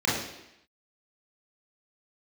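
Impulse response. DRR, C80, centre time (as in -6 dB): -7.5 dB, 5.5 dB, 58 ms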